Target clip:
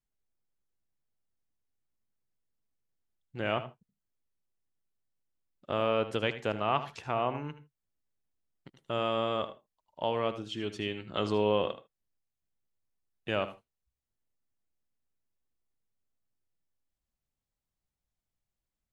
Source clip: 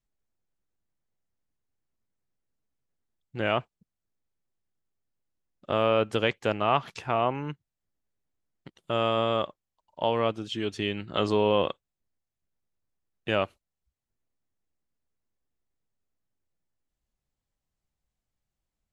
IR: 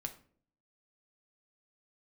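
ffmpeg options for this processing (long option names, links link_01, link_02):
-filter_complex "[0:a]asplit=2[link_01][link_02];[1:a]atrim=start_sample=2205,atrim=end_sample=3969,adelay=76[link_03];[link_02][link_03]afir=irnorm=-1:irlink=0,volume=-10.5dB[link_04];[link_01][link_04]amix=inputs=2:normalize=0,volume=-5dB"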